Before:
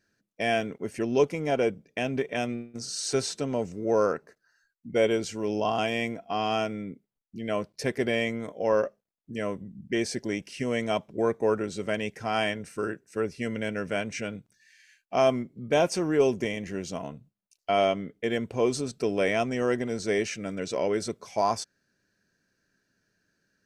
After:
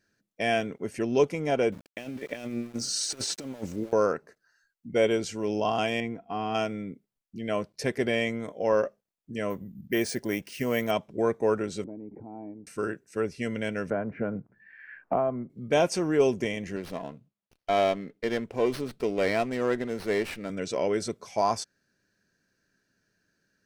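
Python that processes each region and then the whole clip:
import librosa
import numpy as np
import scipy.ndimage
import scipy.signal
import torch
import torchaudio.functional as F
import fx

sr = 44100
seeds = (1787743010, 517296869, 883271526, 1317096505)

y = fx.chain(x, sr, fx.comb(ms=3.5, depth=0.33),
    fx.over_compress(threshold_db=-33.0, ratio=-0.5),
    fx.sample_gate(floor_db=-47.0), at=(1.72, 3.93))
y = fx.chain(y, sr, fx.lowpass(hz=1100.0, slope=6),
    fx.peak_eq(hz=590.0, db=-14.0, octaves=0.2), at=(6.0, 6.55))
y = fx.chain(y, sr, fx.dynamic_eq(hz=1100.0, q=0.85, threshold_db=-46.0, ratio=4.0, max_db=4),
    fx.resample_bad(factor=3, down='none', up='hold'), at=(9.5, 10.91))
y = fx.chain(y, sr, fx.formant_cascade(vowel='u'),
    fx.air_absorb(metres=220.0),
    fx.pre_swell(db_per_s=27.0), at=(11.84, 12.67))
y = fx.chain(y, sr, fx.lowpass(hz=1400.0, slope=24),
    fx.band_squash(depth_pct=100), at=(13.9, 15.5))
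y = fx.chain(y, sr, fx.highpass(hz=200.0, slope=6),
    fx.high_shelf(hz=5400.0, db=-3.5),
    fx.running_max(window=5), at=(16.76, 20.5))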